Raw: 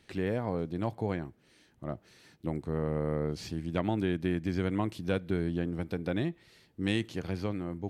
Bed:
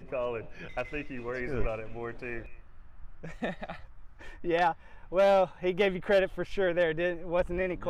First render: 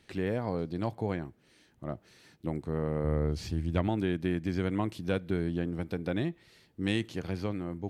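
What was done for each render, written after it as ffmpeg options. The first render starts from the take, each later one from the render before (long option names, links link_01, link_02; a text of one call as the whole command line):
ffmpeg -i in.wav -filter_complex "[0:a]asettb=1/sr,asplit=3[link_01][link_02][link_03];[link_01]atrim=end=0.414[link_04];[link_02]atrim=start=0.41:end=0.88,asetpts=PTS-STARTPTS,afade=type=in:duration=0.004:curve=qsin,afade=type=out:start_time=0.466:duration=0.004:curve=qsin,equalizer=frequency=4600:width=4.6:gain=10[link_05];[link_03]atrim=start=0.876[link_06];[link_04][link_05]acrossfade=duration=0.004:curve1=hsin:curve2=qsin[link_07];[link_07][link_06]acrossfade=duration=0.004:curve1=qsin:curve2=hsin,asettb=1/sr,asplit=3[link_08][link_09][link_10];[link_08]atrim=end=3.044[link_11];[link_09]atrim=start=3.04:end=3.88,asetpts=PTS-STARTPTS,afade=type=in:duration=0.004:curve=qsin,afade=type=out:start_time=0.836:duration=0.004:curve=qsin,equalizer=frequency=71:width=1.3:gain=12[link_12];[link_10]atrim=start=3.876[link_13];[link_11][link_12]acrossfade=duration=0.004:curve1=hsin:curve2=qsin[link_14];[link_14][link_13]acrossfade=duration=0.004:curve1=qsin:curve2=hsin" out.wav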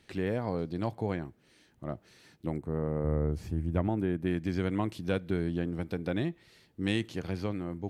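ffmpeg -i in.wav -filter_complex "[0:a]asettb=1/sr,asplit=3[link_01][link_02][link_03];[link_01]atrim=end=2.584[link_04];[link_02]atrim=start=2.58:end=4.27,asetpts=PTS-STARTPTS,afade=type=in:duration=0.004:curve=qsin,afade=type=out:start_time=1.686:duration=0.004:curve=qsin,equalizer=frequency=4300:width_type=o:width=1.7:gain=-14.5[link_05];[link_03]atrim=start=4.266[link_06];[link_04][link_05]acrossfade=duration=0.004:curve1=hsin:curve2=qsin[link_07];[link_07][link_06]acrossfade=duration=0.004:curve1=qsin:curve2=hsin" out.wav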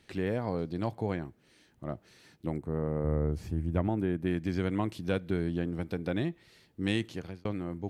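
ffmpeg -i in.wav -filter_complex "[0:a]asplit=2[link_01][link_02];[link_01]atrim=end=7.45,asetpts=PTS-STARTPTS,afade=type=out:start_time=6.95:duration=0.5:curve=qsin[link_03];[link_02]atrim=start=7.45,asetpts=PTS-STARTPTS,afade=type=in:duration=0.004:curve=hsin[link_04];[link_03][link_04]concat=n=2:v=0:a=1" out.wav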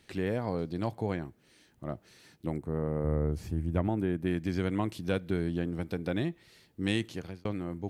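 ffmpeg -i in.wav -af "highshelf=frequency=6100:gain=4.5" out.wav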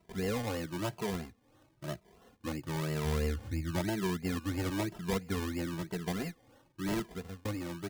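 ffmpeg -i in.wav -filter_complex "[0:a]acrusher=samples=26:mix=1:aa=0.000001:lfo=1:lforange=15.6:lforate=3,asplit=2[link_01][link_02];[link_02]adelay=2.6,afreqshift=1[link_03];[link_01][link_03]amix=inputs=2:normalize=1" out.wav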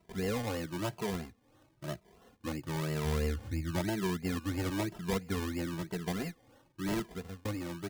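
ffmpeg -i in.wav -af anull out.wav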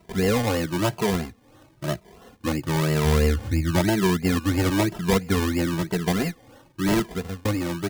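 ffmpeg -i in.wav -af "volume=12dB" out.wav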